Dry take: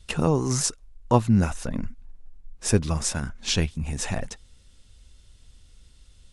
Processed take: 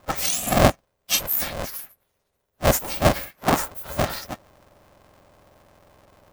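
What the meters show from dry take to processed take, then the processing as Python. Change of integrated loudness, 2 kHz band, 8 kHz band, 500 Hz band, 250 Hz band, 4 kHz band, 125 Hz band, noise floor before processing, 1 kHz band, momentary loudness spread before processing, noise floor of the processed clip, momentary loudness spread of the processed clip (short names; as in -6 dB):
+2.5 dB, +7.0 dB, +1.5 dB, +4.5 dB, -2.5 dB, +3.5 dB, -3.0 dB, -55 dBFS, +6.5 dB, 11 LU, -75 dBFS, 14 LU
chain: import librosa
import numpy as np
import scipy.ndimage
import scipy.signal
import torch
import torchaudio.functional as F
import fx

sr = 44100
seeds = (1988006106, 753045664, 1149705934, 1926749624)

y = fx.octave_mirror(x, sr, pivot_hz=1700.0)
y = y * np.sign(np.sin(2.0 * np.pi * 250.0 * np.arange(len(y)) / sr))
y = y * 10.0 ** (4.5 / 20.0)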